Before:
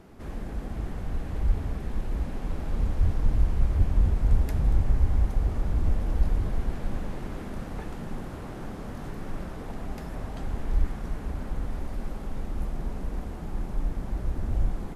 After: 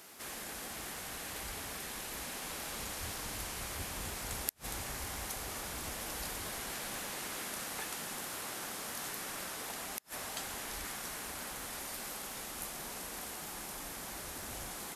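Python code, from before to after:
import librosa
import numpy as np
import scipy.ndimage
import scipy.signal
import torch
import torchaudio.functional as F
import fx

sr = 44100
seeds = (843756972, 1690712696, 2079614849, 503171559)

y = np.diff(x, prepend=0.0)
y = fx.gate_flip(y, sr, shuts_db=-35.0, range_db=-34)
y = F.gain(torch.from_numpy(y), 16.5).numpy()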